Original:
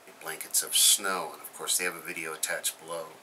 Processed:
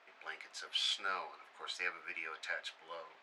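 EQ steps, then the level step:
resonant band-pass 2,200 Hz, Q 0.65
high-frequency loss of the air 150 metres
−4.0 dB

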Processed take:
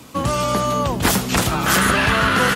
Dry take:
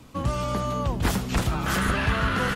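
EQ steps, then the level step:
high-pass filter 190 Hz 6 dB per octave
high-shelf EQ 5,700 Hz +6.5 dB
+9.0 dB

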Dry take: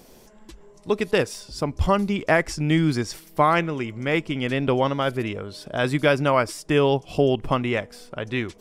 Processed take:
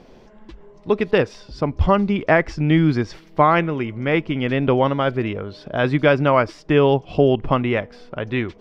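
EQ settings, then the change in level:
high-frequency loss of the air 230 metres
+4.5 dB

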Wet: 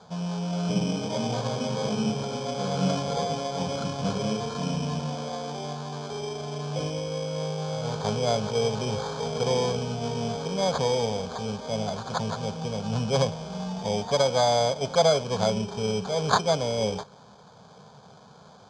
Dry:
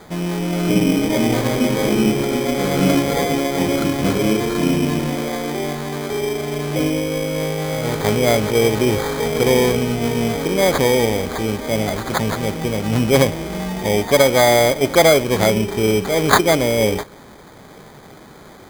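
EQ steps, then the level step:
loudspeaker in its box 160–5,500 Hz, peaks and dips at 260 Hz −7 dB, 590 Hz −7 dB, 830 Hz −6 dB, 1,200 Hz −7 dB, 2,700 Hz −4 dB, 3,900 Hz −6 dB
phaser with its sweep stopped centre 820 Hz, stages 4
0.0 dB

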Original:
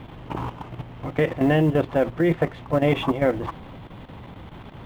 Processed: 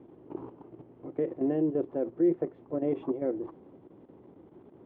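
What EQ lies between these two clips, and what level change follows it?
resonant band-pass 360 Hz, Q 3.3
−2.0 dB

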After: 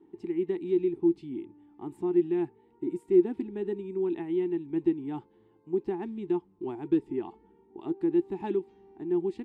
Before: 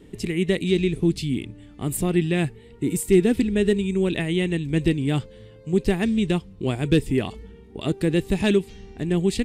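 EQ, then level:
pair of resonant band-passes 550 Hz, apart 1.3 octaves
0.0 dB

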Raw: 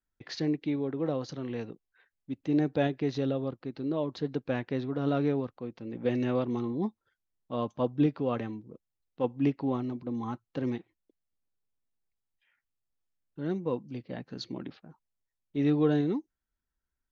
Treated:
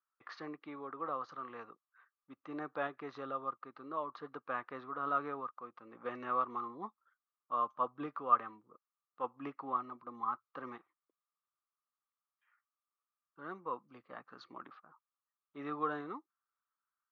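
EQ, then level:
resonant band-pass 1,200 Hz, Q 12
+15.5 dB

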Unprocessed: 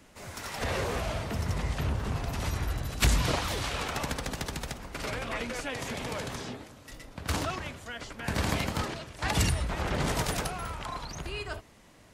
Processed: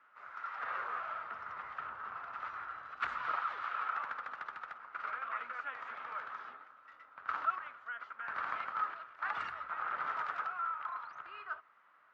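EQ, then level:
transistor ladder low-pass 1,400 Hz, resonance 75%
first difference
tilt shelving filter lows −5.5 dB, about 660 Hz
+14.5 dB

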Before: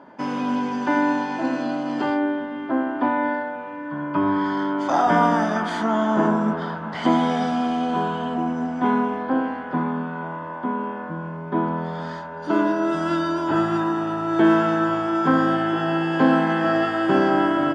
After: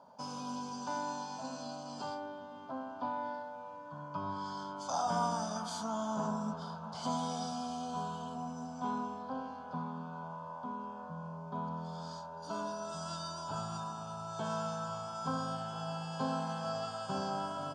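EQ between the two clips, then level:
dynamic equaliser 650 Hz, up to −6 dB, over −34 dBFS, Q 0.94
high shelf with overshoot 3,900 Hz +8.5 dB, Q 1.5
phaser with its sweep stopped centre 790 Hz, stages 4
−8.5 dB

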